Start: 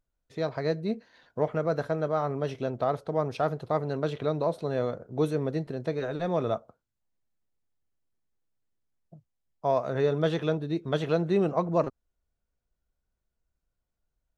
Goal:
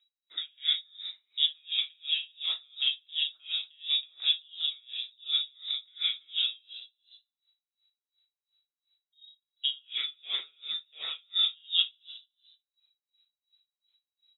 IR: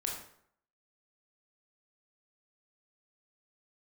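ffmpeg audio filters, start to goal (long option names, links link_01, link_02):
-filter_complex "[0:a]acompressor=threshold=-36dB:ratio=2[link_01];[1:a]atrim=start_sample=2205,atrim=end_sample=3969[link_02];[link_01][link_02]afir=irnorm=-1:irlink=0,flanger=delay=3:depth=6.1:regen=61:speed=1.6:shape=triangular,asettb=1/sr,asplit=3[link_03][link_04][link_05];[link_03]atrim=end=9.804[link_06];[link_04]atrim=start=9.8:end=11.34,asetpts=PTS-STARTPTS,afade=type=in:duration=0.004:curve=qsin,afade=type=out:start_time=1.536:duration=0.004:curve=qsin,lowshelf=frequency=360:gain=-9[link_07];[link_05]atrim=start=11.336[link_08];[link_06][link_07]acrossfade=duration=0.004:curve1=hsin:curve2=qsin[link_09];[link_09][link_08]acrossfade=duration=0.004:curve1=qsin:curve2=hsin,lowpass=frequency=3300:width_type=q:width=0.5098,lowpass=frequency=3300:width_type=q:width=0.6013,lowpass=frequency=3300:width_type=q:width=0.9,lowpass=frequency=3300:width_type=q:width=2.563,afreqshift=-3900,aemphasis=mode=production:type=bsi,asplit=6[link_10][link_11][link_12][link_13][link_14][link_15];[link_11]adelay=146,afreqshift=52,volume=-12.5dB[link_16];[link_12]adelay=292,afreqshift=104,volume=-18.7dB[link_17];[link_13]adelay=438,afreqshift=156,volume=-24.9dB[link_18];[link_14]adelay=584,afreqshift=208,volume=-31.1dB[link_19];[link_15]adelay=730,afreqshift=260,volume=-37.3dB[link_20];[link_10][link_16][link_17][link_18][link_19][link_20]amix=inputs=6:normalize=0,aeval=exprs='val(0)*pow(10,-35*(0.5-0.5*cos(2*PI*2.8*n/s))/20)':channel_layout=same,volume=8.5dB"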